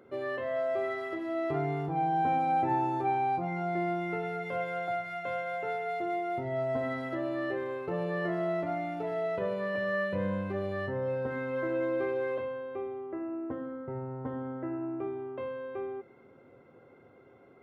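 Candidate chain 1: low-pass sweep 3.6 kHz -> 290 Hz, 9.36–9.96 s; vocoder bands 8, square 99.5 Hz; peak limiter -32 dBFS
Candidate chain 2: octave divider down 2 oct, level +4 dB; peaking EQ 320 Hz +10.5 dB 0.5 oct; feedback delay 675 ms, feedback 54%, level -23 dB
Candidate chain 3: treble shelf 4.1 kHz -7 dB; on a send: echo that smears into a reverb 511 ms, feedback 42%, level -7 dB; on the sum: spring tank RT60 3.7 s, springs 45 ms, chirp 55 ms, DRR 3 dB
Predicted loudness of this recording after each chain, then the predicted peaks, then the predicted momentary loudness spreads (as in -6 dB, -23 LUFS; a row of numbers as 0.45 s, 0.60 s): -39.0 LUFS, -29.0 LUFS, -32.0 LUFS; -32.0 dBFS, -13.5 dBFS, -15.5 dBFS; 4 LU, 8 LU, 10 LU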